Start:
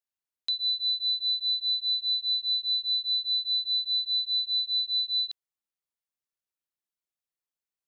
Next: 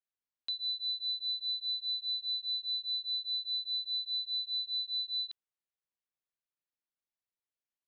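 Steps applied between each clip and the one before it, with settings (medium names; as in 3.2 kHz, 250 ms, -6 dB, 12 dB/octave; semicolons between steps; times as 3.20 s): low-pass 4 kHz 12 dB/octave; trim -4.5 dB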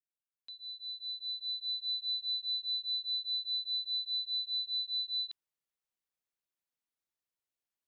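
fade-in on the opening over 1.99 s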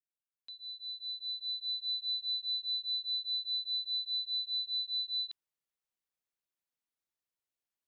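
no audible change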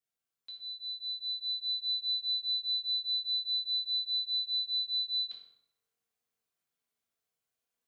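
reverberation RT60 0.80 s, pre-delay 3 ms, DRR -4 dB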